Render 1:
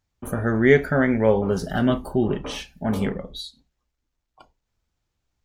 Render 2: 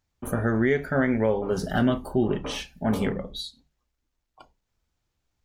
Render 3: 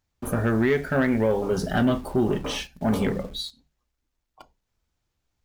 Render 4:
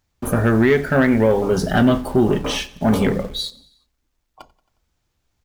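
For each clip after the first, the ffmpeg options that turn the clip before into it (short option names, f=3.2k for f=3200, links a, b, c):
-af "alimiter=limit=-12.5dB:level=0:latency=1:release=411,bandreject=f=50:t=h:w=6,bandreject=f=100:t=h:w=6,bandreject=f=150:t=h:w=6,bandreject=f=200:t=h:w=6"
-filter_complex "[0:a]asplit=2[a][b];[b]acrusher=bits=6:mix=0:aa=0.000001,volume=-9dB[c];[a][c]amix=inputs=2:normalize=0,asoftclip=type=tanh:threshold=-13dB"
-af "aecho=1:1:90|180|270|360:0.0794|0.0469|0.0277|0.0163,volume=6.5dB"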